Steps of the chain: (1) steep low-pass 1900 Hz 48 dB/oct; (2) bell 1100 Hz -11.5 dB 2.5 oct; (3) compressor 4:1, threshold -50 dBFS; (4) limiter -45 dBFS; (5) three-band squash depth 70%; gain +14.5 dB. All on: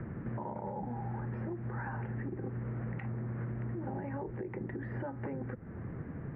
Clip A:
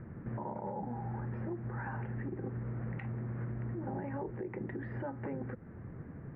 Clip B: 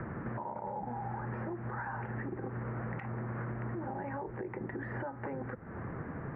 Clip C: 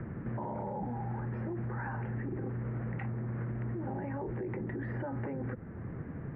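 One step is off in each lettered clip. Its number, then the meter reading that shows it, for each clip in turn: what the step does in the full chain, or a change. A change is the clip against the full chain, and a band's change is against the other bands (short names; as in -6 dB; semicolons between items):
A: 5, crest factor change -2.0 dB; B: 2, 125 Hz band -5.0 dB; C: 3, mean gain reduction 7.5 dB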